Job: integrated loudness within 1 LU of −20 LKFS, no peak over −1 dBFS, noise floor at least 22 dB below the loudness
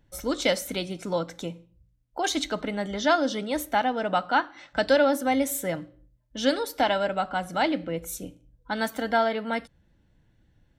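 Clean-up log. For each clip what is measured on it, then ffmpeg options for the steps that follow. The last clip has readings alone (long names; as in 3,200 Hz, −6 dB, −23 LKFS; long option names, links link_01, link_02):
integrated loudness −26.5 LKFS; sample peak −9.0 dBFS; target loudness −20.0 LKFS
→ -af "volume=6.5dB"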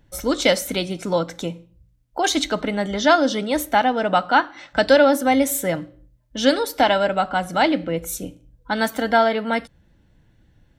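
integrated loudness −20.0 LKFS; sample peak −2.5 dBFS; background noise floor −59 dBFS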